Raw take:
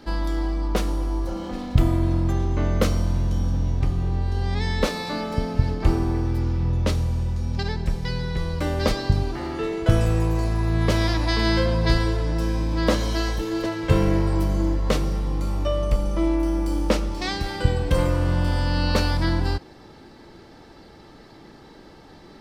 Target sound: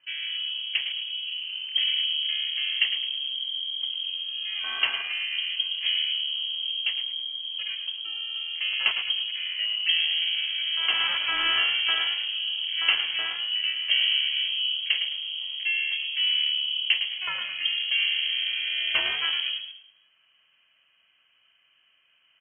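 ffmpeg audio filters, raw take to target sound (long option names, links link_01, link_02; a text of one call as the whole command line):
ffmpeg -i in.wav -filter_complex "[0:a]highpass=frequency=270:poles=1,afwtdn=0.0316,asplit=5[link_01][link_02][link_03][link_04][link_05];[link_02]adelay=107,afreqshift=-73,volume=-8dB[link_06];[link_03]adelay=214,afreqshift=-146,volume=-16.2dB[link_07];[link_04]adelay=321,afreqshift=-219,volume=-24.4dB[link_08];[link_05]adelay=428,afreqshift=-292,volume=-32.5dB[link_09];[link_01][link_06][link_07][link_08][link_09]amix=inputs=5:normalize=0,lowpass=frequency=2800:width_type=q:width=0.5098,lowpass=frequency=2800:width_type=q:width=0.6013,lowpass=frequency=2800:width_type=q:width=0.9,lowpass=frequency=2800:width_type=q:width=2.563,afreqshift=-3300" out.wav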